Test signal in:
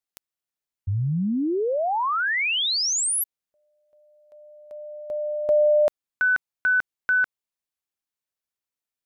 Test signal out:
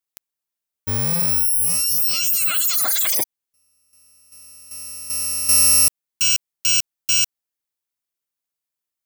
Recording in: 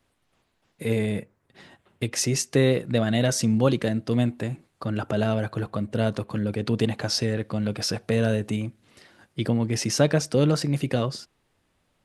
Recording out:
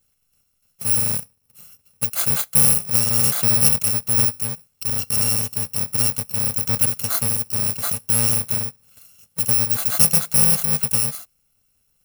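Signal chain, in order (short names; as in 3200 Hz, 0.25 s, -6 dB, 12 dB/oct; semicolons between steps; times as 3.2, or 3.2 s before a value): FFT order left unsorted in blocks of 128 samples; high shelf 8300 Hz +6.5 dB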